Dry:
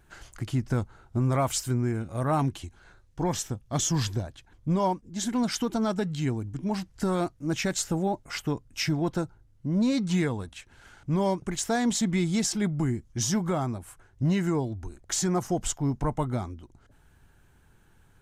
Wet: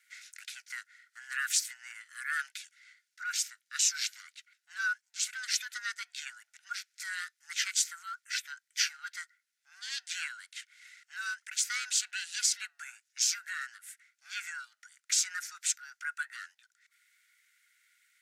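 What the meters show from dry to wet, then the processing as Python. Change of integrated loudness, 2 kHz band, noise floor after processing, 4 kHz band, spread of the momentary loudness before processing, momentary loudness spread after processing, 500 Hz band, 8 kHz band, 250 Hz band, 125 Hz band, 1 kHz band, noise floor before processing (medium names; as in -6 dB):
-5.0 dB, +4.5 dB, -82 dBFS, +2.0 dB, 9 LU, 18 LU, under -40 dB, +1.5 dB, under -40 dB, under -40 dB, -13.0 dB, -60 dBFS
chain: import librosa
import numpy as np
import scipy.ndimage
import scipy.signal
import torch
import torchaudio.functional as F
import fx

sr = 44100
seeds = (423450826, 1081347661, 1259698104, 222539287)

y = x * np.sin(2.0 * np.pi * 550.0 * np.arange(len(x)) / sr)
y = scipy.signal.sosfilt(scipy.signal.cheby1(6, 3, 1400.0, 'highpass', fs=sr, output='sos'), y)
y = F.gain(torch.from_numpy(y), 5.5).numpy()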